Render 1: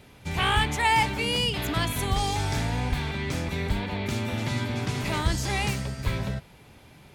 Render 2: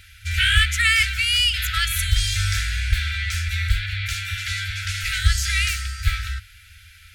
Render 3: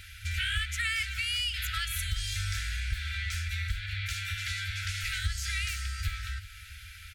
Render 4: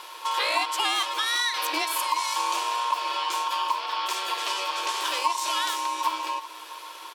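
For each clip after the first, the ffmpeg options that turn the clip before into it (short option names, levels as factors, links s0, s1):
-af "afftfilt=real='re*(1-between(b*sr/4096,100,1300))':imag='im*(1-between(b*sr/4096,100,1300))':win_size=4096:overlap=0.75,volume=2.66"
-af "acompressor=threshold=0.0178:ratio=2.5,aecho=1:1:380|760|1140|1520:0.126|0.0604|0.029|0.0139"
-af "aeval=exprs='val(0)*sin(2*PI*1000*n/s)':c=same,volume=2.66"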